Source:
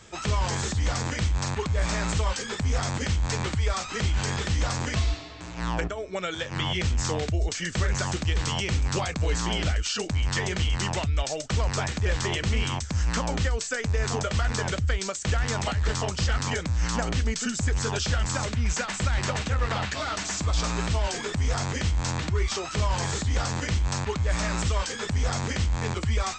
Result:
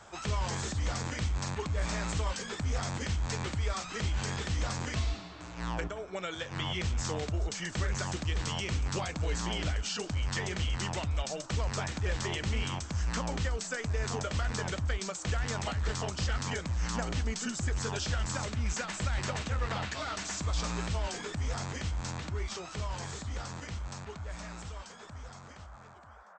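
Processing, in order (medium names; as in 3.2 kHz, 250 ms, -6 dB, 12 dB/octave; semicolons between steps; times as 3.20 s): fade out at the end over 5.88 s; frequency-shifting echo 177 ms, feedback 37%, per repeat +120 Hz, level -20.5 dB; band noise 560–1500 Hz -49 dBFS; trim -6.5 dB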